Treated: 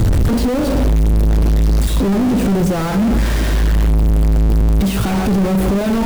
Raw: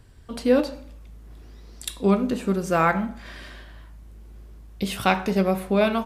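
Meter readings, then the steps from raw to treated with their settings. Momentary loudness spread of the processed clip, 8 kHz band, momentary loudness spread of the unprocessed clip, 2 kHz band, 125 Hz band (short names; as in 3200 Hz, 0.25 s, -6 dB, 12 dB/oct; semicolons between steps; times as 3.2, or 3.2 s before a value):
2 LU, +10.0 dB, 19 LU, +2.0 dB, +17.0 dB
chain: infinite clipping; tilt shelf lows +8 dB, about 640 Hz; gain +6.5 dB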